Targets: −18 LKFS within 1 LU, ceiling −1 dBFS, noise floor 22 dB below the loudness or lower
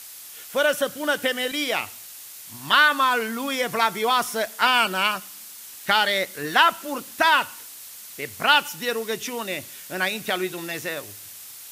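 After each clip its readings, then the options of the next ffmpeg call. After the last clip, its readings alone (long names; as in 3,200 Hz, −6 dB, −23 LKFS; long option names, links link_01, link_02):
background noise floor −41 dBFS; target noise floor −45 dBFS; integrated loudness −22.5 LKFS; sample peak −3.5 dBFS; target loudness −18.0 LKFS
→ -af "afftdn=noise_reduction=6:noise_floor=-41"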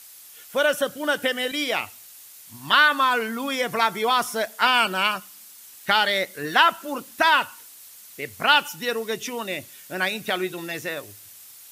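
background noise floor −46 dBFS; integrated loudness −22.5 LKFS; sample peak −3.5 dBFS; target loudness −18.0 LKFS
→ -af "volume=4.5dB,alimiter=limit=-1dB:level=0:latency=1"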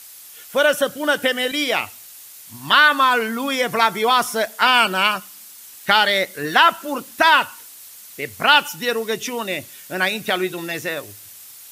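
integrated loudness −18.0 LKFS; sample peak −1.0 dBFS; background noise floor −42 dBFS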